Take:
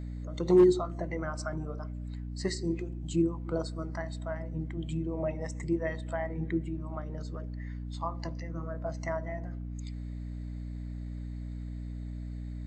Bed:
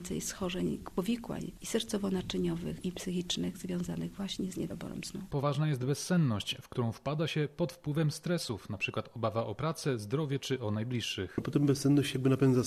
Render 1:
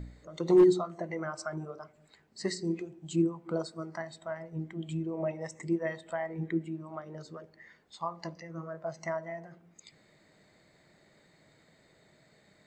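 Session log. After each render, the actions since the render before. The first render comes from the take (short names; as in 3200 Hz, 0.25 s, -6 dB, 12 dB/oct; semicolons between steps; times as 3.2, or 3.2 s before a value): de-hum 60 Hz, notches 5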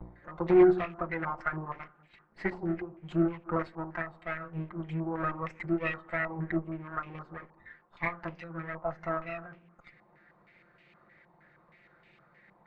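minimum comb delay 5.7 ms; stepped low-pass 6.4 Hz 960–2600 Hz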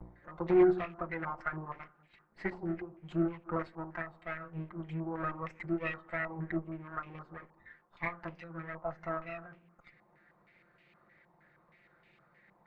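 gain -4 dB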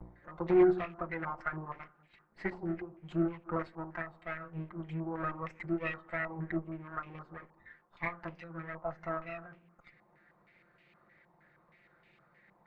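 nothing audible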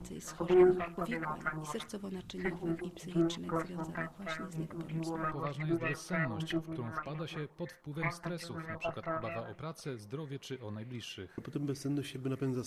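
add bed -9 dB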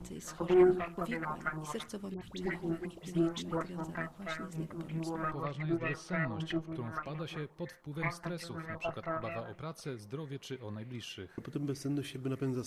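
2.14–3.61 dispersion highs, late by 76 ms, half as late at 1400 Hz; 5.45–6.74 air absorption 54 m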